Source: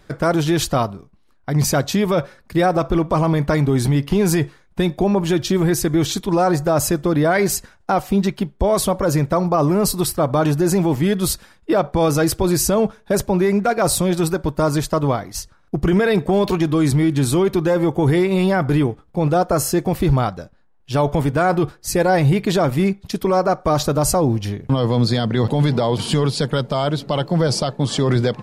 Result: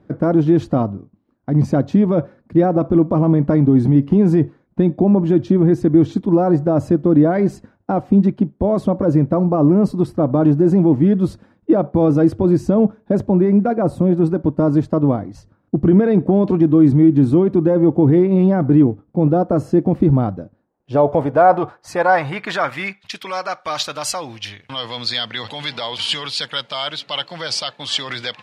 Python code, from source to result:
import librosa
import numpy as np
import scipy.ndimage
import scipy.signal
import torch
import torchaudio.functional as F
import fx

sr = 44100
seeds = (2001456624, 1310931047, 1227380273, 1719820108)

y = fx.peak_eq(x, sr, hz=4800.0, db=-7.0, octaves=1.8, at=(13.75, 14.24))
y = fx.filter_sweep_bandpass(y, sr, from_hz=280.0, to_hz=2900.0, start_s=20.39, end_s=23.31, q=1.5)
y = fx.graphic_eq_31(y, sr, hz=(100, 400, 12500), db=(9, -6, -3))
y = y * 10.0 ** (8.5 / 20.0)